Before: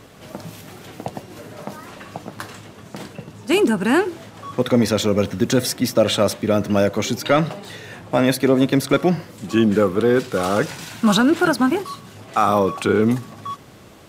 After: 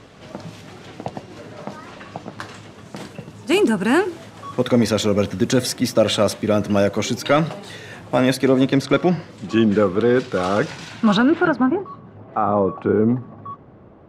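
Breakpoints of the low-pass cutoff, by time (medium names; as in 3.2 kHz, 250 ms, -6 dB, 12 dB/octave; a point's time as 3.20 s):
2.30 s 6.1 kHz
3.13 s 11 kHz
8.23 s 11 kHz
8.93 s 5.6 kHz
10.86 s 5.6 kHz
11.48 s 2.2 kHz
11.78 s 1 kHz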